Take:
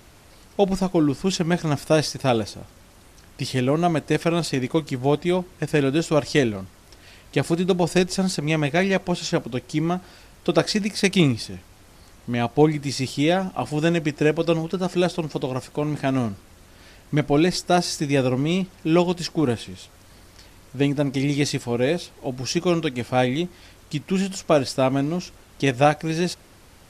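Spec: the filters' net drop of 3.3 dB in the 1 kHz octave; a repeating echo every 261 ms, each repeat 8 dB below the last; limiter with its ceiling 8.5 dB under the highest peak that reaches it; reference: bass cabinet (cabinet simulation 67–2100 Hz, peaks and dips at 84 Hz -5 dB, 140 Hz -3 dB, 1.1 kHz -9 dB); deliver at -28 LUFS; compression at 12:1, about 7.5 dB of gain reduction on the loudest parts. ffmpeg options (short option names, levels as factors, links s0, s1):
-af "equalizer=f=1000:t=o:g=-3,acompressor=threshold=0.1:ratio=12,alimiter=limit=0.112:level=0:latency=1,highpass=f=67:w=0.5412,highpass=f=67:w=1.3066,equalizer=f=84:t=q:w=4:g=-5,equalizer=f=140:t=q:w=4:g=-3,equalizer=f=1100:t=q:w=4:g=-9,lowpass=f=2100:w=0.5412,lowpass=f=2100:w=1.3066,aecho=1:1:261|522|783|1044|1305:0.398|0.159|0.0637|0.0255|0.0102,volume=1.33"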